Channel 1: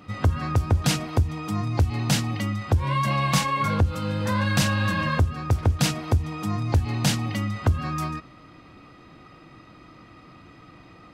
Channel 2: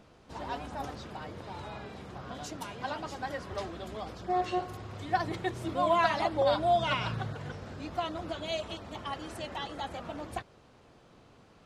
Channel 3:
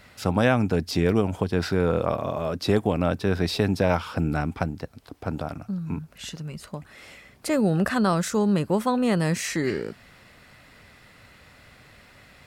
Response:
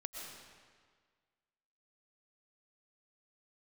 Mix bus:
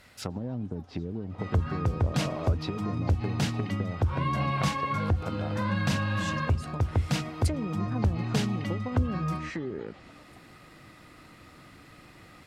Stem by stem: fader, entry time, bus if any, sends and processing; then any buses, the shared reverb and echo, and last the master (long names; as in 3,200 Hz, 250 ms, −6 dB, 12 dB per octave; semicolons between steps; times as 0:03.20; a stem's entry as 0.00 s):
−5.5 dB, 1.30 s, send −22 dB, low-pass filter 3,400 Hz 6 dB per octave
−15.0 dB, 0.00 s, no send, downward compressor 4 to 1, threshold −39 dBFS, peak gain reduction 15 dB
−5.0 dB, 0.00 s, no send, treble cut that deepens with the level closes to 330 Hz, closed at −18.5 dBFS; high-shelf EQ 5,000 Hz +5 dB; downward compressor, threshold −25 dBFS, peak gain reduction 8.5 dB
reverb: on, RT60 1.7 s, pre-delay 80 ms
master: no processing